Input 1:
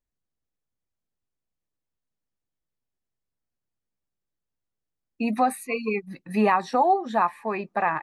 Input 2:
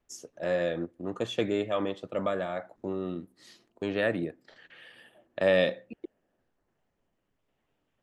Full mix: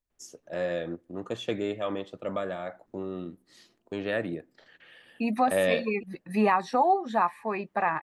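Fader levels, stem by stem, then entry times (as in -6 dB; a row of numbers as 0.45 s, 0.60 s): -2.5 dB, -2.0 dB; 0.00 s, 0.10 s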